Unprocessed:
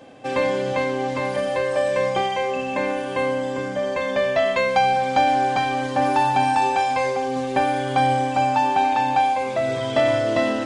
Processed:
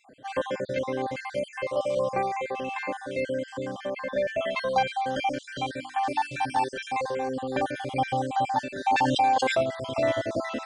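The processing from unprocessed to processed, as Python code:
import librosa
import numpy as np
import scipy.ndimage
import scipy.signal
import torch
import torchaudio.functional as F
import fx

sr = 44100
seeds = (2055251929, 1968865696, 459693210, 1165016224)

y = fx.spec_dropout(x, sr, seeds[0], share_pct=48)
y = fx.high_shelf(y, sr, hz=3400.0, db=-7.0, at=(3.87, 4.28))
y = fx.hum_notches(y, sr, base_hz=50, count=6, at=(5.74, 6.58), fade=0.02)
y = fx.env_flatten(y, sr, amount_pct=70, at=(8.86, 9.62), fade=0.02)
y = y * 10.0 ** (-4.5 / 20.0)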